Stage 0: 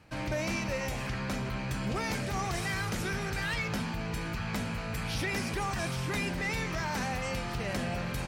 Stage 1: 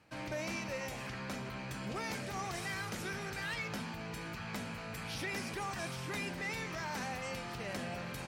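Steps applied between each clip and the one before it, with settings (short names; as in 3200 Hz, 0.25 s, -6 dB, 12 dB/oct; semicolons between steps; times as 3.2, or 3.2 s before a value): HPF 170 Hz 6 dB/oct; gain -5.5 dB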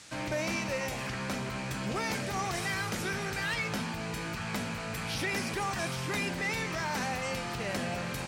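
band noise 1200–8600 Hz -59 dBFS; gain +6.5 dB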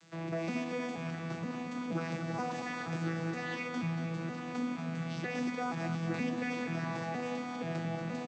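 arpeggiated vocoder bare fifth, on E3, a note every 0.476 s; feedback echo 0.234 s, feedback 54%, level -8 dB; gain -1.5 dB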